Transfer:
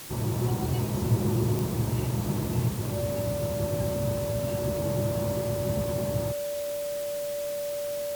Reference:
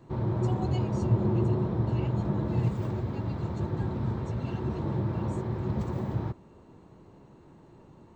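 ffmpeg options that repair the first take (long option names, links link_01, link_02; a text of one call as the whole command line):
ffmpeg -i in.wav -af "adeclick=threshold=4,bandreject=frequency=580:width=30,afwtdn=0.0079" out.wav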